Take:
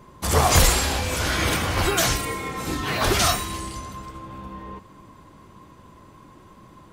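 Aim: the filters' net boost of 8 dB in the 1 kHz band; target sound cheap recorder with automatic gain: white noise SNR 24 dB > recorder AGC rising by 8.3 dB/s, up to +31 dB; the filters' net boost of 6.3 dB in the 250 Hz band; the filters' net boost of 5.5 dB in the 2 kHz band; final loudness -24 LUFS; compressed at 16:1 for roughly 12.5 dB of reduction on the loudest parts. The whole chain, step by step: peaking EQ 250 Hz +8 dB; peaking EQ 1 kHz +8.5 dB; peaking EQ 2 kHz +4 dB; compression 16:1, threshold -21 dBFS; white noise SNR 24 dB; recorder AGC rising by 8.3 dB/s, up to +31 dB; trim +2.5 dB

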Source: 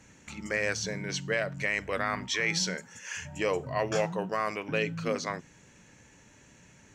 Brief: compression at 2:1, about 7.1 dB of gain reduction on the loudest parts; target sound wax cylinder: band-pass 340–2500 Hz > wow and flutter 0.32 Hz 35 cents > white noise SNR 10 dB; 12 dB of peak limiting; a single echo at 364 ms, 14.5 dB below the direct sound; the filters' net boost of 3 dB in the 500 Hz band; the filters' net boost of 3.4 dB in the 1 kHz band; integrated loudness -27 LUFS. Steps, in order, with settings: peaking EQ 500 Hz +3.5 dB; peaking EQ 1 kHz +3.5 dB; compression 2:1, threshold -33 dBFS; peak limiter -30.5 dBFS; band-pass 340–2500 Hz; delay 364 ms -14.5 dB; wow and flutter 0.32 Hz 35 cents; white noise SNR 10 dB; trim +16.5 dB

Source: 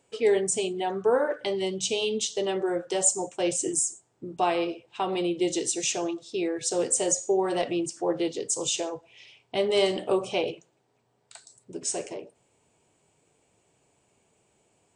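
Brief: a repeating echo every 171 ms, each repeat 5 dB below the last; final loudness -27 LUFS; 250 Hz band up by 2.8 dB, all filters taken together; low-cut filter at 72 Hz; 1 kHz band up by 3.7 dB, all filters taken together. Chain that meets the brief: high-pass 72 Hz; peaking EQ 250 Hz +4.5 dB; peaking EQ 1 kHz +5 dB; feedback delay 171 ms, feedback 56%, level -5 dB; trim -3 dB

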